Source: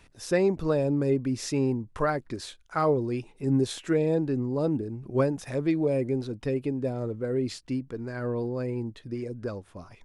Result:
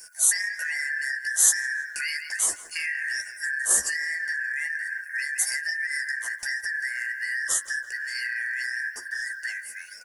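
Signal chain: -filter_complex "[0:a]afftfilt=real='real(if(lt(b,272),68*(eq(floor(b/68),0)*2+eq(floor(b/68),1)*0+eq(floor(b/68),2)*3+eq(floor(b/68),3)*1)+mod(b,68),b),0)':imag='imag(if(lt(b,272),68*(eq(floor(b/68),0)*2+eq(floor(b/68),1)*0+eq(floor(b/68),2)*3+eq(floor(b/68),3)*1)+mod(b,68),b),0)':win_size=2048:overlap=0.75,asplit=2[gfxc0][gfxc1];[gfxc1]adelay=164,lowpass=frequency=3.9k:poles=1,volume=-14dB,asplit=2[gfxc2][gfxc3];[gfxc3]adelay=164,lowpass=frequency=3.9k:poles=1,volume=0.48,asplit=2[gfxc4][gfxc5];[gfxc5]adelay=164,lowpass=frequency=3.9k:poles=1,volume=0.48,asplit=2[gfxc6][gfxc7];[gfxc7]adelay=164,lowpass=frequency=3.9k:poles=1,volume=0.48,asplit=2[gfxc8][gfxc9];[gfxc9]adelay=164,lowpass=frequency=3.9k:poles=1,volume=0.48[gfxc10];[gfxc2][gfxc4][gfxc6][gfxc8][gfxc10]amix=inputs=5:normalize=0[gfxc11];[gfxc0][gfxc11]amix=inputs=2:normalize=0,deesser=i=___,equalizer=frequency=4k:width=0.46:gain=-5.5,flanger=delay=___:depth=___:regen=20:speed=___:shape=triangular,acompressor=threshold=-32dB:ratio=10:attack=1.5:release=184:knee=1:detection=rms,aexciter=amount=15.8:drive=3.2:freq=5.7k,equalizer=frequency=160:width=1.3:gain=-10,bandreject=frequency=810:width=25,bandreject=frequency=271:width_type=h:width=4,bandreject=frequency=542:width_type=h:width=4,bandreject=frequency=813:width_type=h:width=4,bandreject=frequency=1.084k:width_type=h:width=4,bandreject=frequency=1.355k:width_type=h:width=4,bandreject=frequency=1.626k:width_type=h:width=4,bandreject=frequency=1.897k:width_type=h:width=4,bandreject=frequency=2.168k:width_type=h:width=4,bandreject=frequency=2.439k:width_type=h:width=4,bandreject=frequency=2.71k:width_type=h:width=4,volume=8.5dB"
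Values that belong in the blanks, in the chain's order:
0.3, 8.8, 7.5, 1.2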